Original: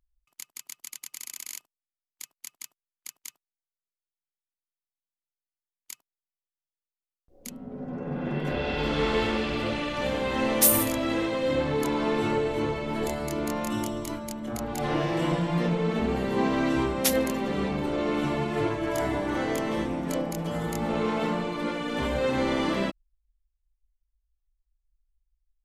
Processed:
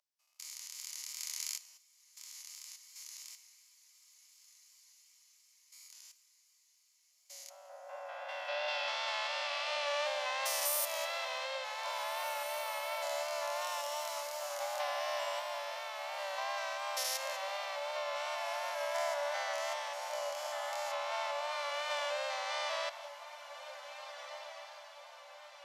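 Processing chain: stepped spectrum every 0.2 s; on a send: diffused feedback echo 1.737 s, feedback 51%, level -15 dB; on the sum: vibrato 2.8 Hz 34 cents; bell 5400 Hz +10 dB 0.73 oct; two-slope reverb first 0.91 s, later 2.9 s, from -19 dB, DRR 15.5 dB; compressor, threshold -28 dBFS, peak gain reduction 8.5 dB; Chebyshev high-pass 560 Hz, order 8

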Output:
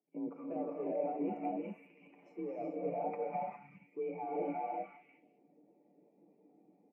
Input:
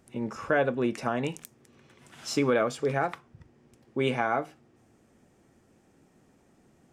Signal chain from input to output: low shelf 190 Hz -10 dB; sample leveller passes 1; overloaded stage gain 28.5 dB; HPF 97 Hz; comb 7.2 ms, depth 39%; on a send: delay with a stepping band-pass 0.203 s, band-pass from 1600 Hz, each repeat 0.7 oct, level -10 dB; on the sum: transient shaper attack +4 dB, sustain -5 dB; EQ curve 720 Hz 0 dB, 1600 Hz -18 dB, 2300 Hz -1 dB, 3400 Hz -27 dB; frequency shift +40 Hz; reverse; compressor 6:1, threshold -47 dBFS, peak gain reduction 21 dB; reverse; non-linear reverb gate 0.43 s rising, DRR -2 dB; spectral expander 1.5:1; gain +8 dB

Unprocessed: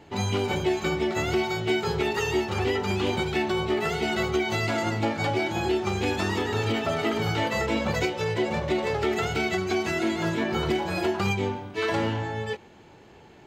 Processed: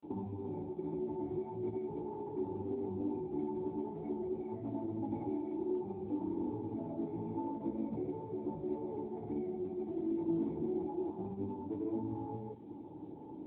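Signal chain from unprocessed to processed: compressor 4:1, threshold -41 dBFS, peak gain reduction 17 dB; grains 0.133 s, grains 20/s, pitch spread up and down by 0 st; vocal tract filter u; spring tank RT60 1.1 s, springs 60 ms, chirp 35 ms, DRR 14.5 dB; gain +15 dB; AMR-NB 10.2 kbps 8000 Hz

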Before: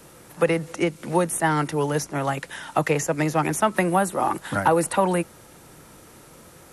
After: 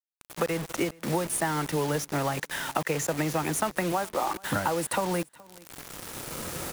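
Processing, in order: recorder AGC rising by 8.3 dB/s; 3.92–4.41 tone controls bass -12 dB, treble -10 dB; compressor 10:1, threshold -24 dBFS, peak gain reduction 10.5 dB; bit-crush 6-bit; feedback echo 0.421 s, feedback 19%, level -24 dB

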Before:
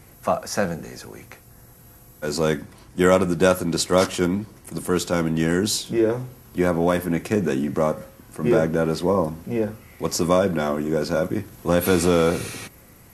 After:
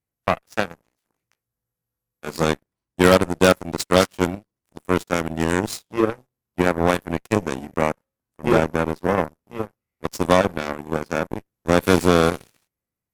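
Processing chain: 1–2.44 doubler 18 ms -3 dB; added harmonics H 5 -9 dB, 7 -8 dB, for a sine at -2.5 dBFS

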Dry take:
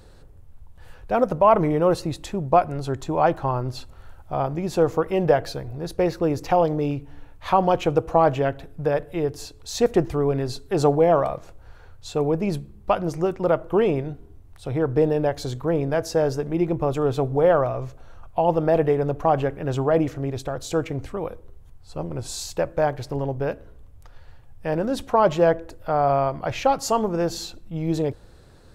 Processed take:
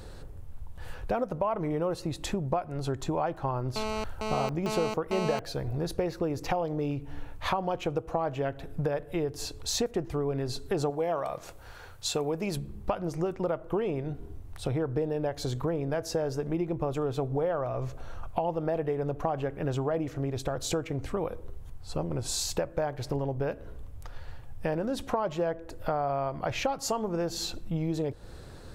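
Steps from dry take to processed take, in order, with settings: 10.9–12.57 tilt +2 dB/oct; compressor 6:1, threshold -32 dBFS, peak gain reduction 19.5 dB; 3.76–5.39 GSM buzz -37 dBFS; gain +4.5 dB

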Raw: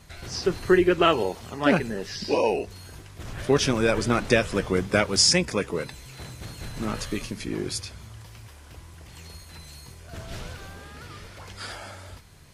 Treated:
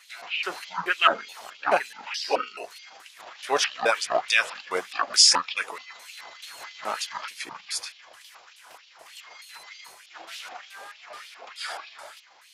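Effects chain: trilling pitch shifter -12 st, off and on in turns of 0.214 s; LFO high-pass sine 3.3 Hz 680–3200 Hz; gain +1 dB

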